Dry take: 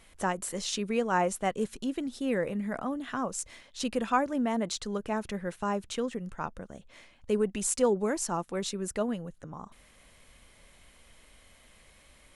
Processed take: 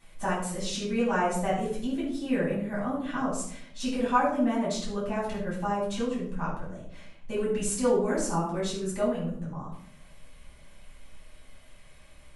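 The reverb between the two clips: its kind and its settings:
rectangular room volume 860 cubic metres, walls furnished, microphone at 9.1 metres
level −9.5 dB

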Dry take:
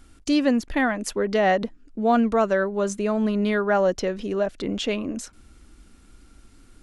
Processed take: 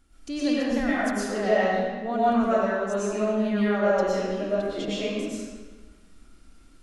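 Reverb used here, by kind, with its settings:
comb and all-pass reverb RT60 1.4 s, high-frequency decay 0.85×, pre-delay 75 ms, DRR −9.5 dB
level −12 dB

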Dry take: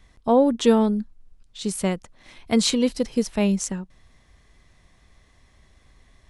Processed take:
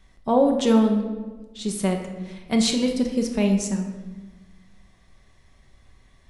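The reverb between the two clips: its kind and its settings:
rectangular room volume 820 cubic metres, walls mixed, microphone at 1.1 metres
level −2.5 dB

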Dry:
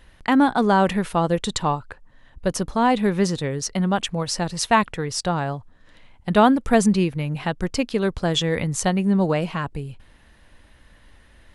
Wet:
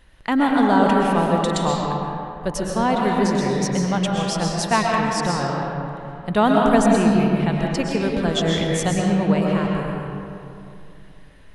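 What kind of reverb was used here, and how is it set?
comb and all-pass reverb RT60 2.7 s, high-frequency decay 0.5×, pre-delay 85 ms, DRR −2 dB
level −2.5 dB

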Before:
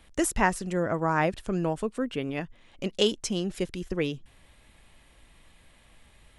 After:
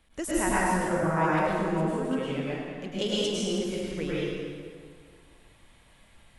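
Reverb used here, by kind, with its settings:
dense smooth reverb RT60 2 s, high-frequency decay 0.75×, pre-delay 90 ms, DRR −8.5 dB
level −8.5 dB

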